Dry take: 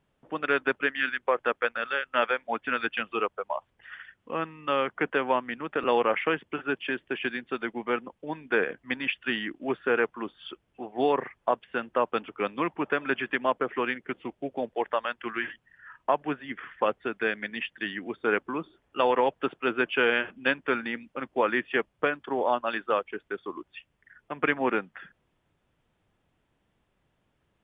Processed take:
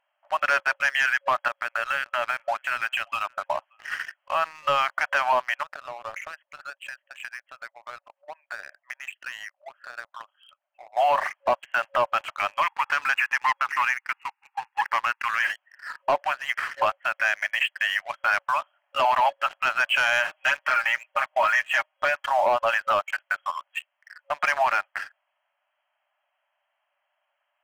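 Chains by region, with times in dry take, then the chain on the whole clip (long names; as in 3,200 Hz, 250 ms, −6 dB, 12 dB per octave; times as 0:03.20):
0:01.48–0:03.98: downward compressor 5 to 1, threshold −35 dBFS + single-tap delay 579 ms −21.5 dB
0:05.63–0:10.97: spectral envelope exaggerated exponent 1.5 + downward compressor 3 to 1, threshold −44 dBFS + high-frequency loss of the air 340 metres
0:12.63–0:15.40: linear-phase brick-wall band-pass 790–2,900 Hz + highs frequency-modulated by the lows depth 0.25 ms
0:20.30–0:22.30: comb filter 6.4 ms, depth 92% + downward compressor 1.5 to 1, threshold −27 dBFS
whole clip: brick-wall band-pass 550–3,300 Hz; leveller curve on the samples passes 2; brickwall limiter −20 dBFS; level +6 dB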